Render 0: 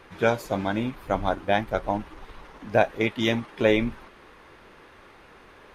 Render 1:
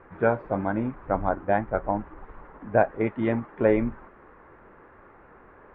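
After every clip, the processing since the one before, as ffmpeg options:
-af "lowpass=f=1.7k:w=0.5412,lowpass=f=1.7k:w=1.3066"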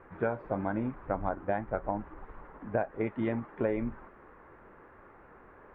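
-af "acompressor=threshold=-24dB:ratio=4,volume=-3dB"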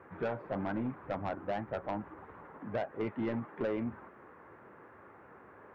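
-af "highpass=f=82:w=0.5412,highpass=f=82:w=1.3066,asoftclip=type=tanh:threshold=-27.5dB"

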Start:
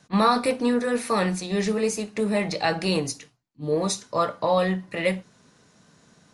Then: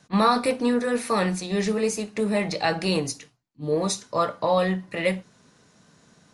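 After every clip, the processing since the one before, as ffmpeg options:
-af anull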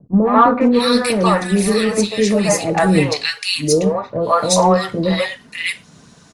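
-filter_complex "[0:a]aphaser=in_gain=1:out_gain=1:delay=4.6:decay=0.33:speed=1:type=triangular,acrossover=split=530|1800[a][b][c];[b]adelay=140[d];[c]adelay=610[e];[a][d][e]amix=inputs=3:normalize=0,acontrast=75,volume=4dB"

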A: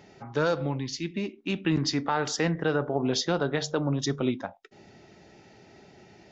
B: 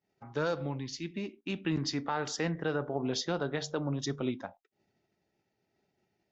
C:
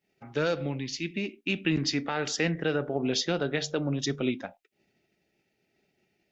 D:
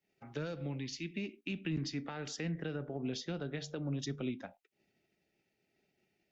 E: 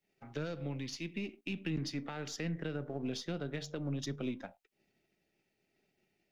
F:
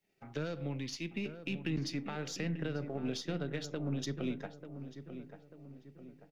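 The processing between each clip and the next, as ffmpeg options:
-af "agate=range=-33dB:threshold=-40dB:ratio=3:detection=peak,volume=-6dB"
-af "equalizer=f=100:t=o:w=0.67:g=-6,equalizer=f=1k:t=o:w=0.67:g=-9,equalizer=f=2.5k:t=o:w=0.67:g=7,volume=5dB"
-filter_complex "[0:a]acrossover=split=250[a][b];[b]acompressor=threshold=-35dB:ratio=6[c];[a][c]amix=inputs=2:normalize=0,volume=-5.5dB"
-af "aeval=exprs='if(lt(val(0),0),0.708*val(0),val(0))':c=same,volume=1.5dB"
-filter_complex "[0:a]asplit=2[a][b];[b]adelay=891,lowpass=f=1.6k:p=1,volume=-10dB,asplit=2[c][d];[d]adelay=891,lowpass=f=1.6k:p=1,volume=0.48,asplit=2[e][f];[f]adelay=891,lowpass=f=1.6k:p=1,volume=0.48,asplit=2[g][h];[h]adelay=891,lowpass=f=1.6k:p=1,volume=0.48,asplit=2[i][j];[j]adelay=891,lowpass=f=1.6k:p=1,volume=0.48[k];[a][c][e][g][i][k]amix=inputs=6:normalize=0,volume=1dB"

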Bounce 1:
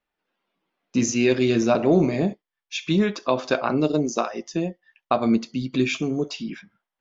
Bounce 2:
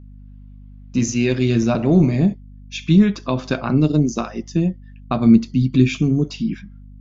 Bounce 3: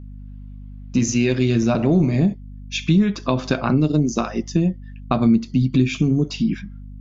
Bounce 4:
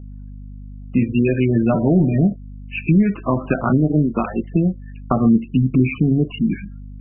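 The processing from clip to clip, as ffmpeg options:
-af "asubboost=boost=8:cutoff=200,aeval=exprs='val(0)+0.0112*(sin(2*PI*50*n/s)+sin(2*PI*2*50*n/s)/2+sin(2*PI*3*50*n/s)/3+sin(2*PI*4*50*n/s)/4+sin(2*PI*5*50*n/s)/5)':c=same"
-af "acompressor=threshold=-20dB:ratio=2.5,volume=4dB"
-af "volume=2dB" -ar 22050 -c:a libmp3lame -b:a 8k

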